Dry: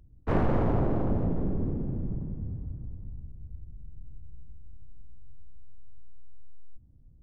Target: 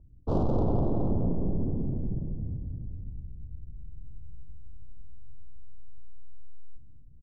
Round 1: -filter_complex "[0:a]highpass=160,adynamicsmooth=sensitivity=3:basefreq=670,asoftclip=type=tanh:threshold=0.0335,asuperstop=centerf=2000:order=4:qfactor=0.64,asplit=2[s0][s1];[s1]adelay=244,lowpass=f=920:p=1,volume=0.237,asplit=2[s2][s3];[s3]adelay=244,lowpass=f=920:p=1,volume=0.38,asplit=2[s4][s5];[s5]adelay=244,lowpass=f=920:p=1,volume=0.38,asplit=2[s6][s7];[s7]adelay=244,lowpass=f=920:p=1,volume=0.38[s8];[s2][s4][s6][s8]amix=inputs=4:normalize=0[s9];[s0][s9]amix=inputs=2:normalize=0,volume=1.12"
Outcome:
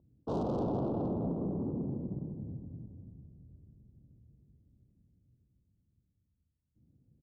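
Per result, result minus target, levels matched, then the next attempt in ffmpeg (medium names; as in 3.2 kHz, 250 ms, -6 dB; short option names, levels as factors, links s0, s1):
saturation: distortion +10 dB; 125 Hz band -3.5 dB
-filter_complex "[0:a]highpass=160,adynamicsmooth=sensitivity=3:basefreq=670,asoftclip=type=tanh:threshold=0.112,asuperstop=centerf=2000:order=4:qfactor=0.64,asplit=2[s0][s1];[s1]adelay=244,lowpass=f=920:p=1,volume=0.237,asplit=2[s2][s3];[s3]adelay=244,lowpass=f=920:p=1,volume=0.38,asplit=2[s4][s5];[s5]adelay=244,lowpass=f=920:p=1,volume=0.38,asplit=2[s6][s7];[s7]adelay=244,lowpass=f=920:p=1,volume=0.38[s8];[s2][s4][s6][s8]amix=inputs=4:normalize=0[s9];[s0][s9]amix=inputs=2:normalize=0,volume=1.12"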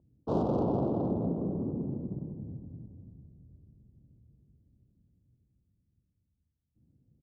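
125 Hz band -4.0 dB
-filter_complex "[0:a]adynamicsmooth=sensitivity=3:basefreq=670,asoftclip=type=tanh:threshold=0.112,asuperstop=centerf=2000:order=4:qfactor=0.64,asplit=2[s0][s1];[s1]adelay=244,lowpass=f=920:p=1,volume=0.237,asplit=2[s2][s3];[s3]adelay=244,lowpass=f=920:p=1,volume=0.38,asplit=2[s4][s5];[s5]adelay=244,lowpass=f=920:p=1,volume=0.38,asplit=2[s6][s7];[s7]adelay=244,lowpass=f=920:p=1,volume=0.38[s8];[s2][s4][s6][s8]amix=inputs=4:normalize=0[s9];[s0][s9]amix=inputs=2:normalize=0,volume=1.12"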